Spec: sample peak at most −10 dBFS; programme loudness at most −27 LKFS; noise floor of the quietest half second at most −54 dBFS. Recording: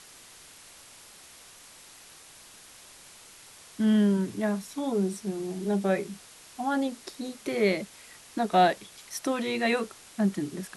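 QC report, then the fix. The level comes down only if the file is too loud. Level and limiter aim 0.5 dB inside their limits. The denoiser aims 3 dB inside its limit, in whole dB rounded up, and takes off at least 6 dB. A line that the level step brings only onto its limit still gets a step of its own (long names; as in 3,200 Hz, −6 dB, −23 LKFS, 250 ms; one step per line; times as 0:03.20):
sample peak −10.5 dBFS: in spec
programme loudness −28.5 LKFS: in spec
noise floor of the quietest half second −51 dBFS: out of spec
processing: broadband denoise 6 dB, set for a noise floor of −51 dBFS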